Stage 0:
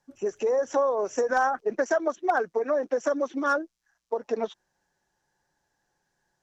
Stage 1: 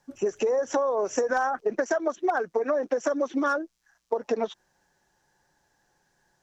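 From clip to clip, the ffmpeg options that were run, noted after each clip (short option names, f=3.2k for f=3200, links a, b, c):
-af "acompressor=threshold=-29dB:ratio=5,volume=6.5dB"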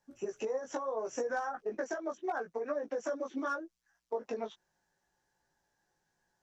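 -af "flanger=delay=17:depth=2.2:speed=0.76,volume=-7dB"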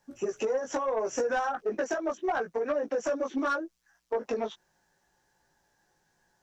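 -af "asoftclip=type=tanh:threshold=-29dB,volume=8dB"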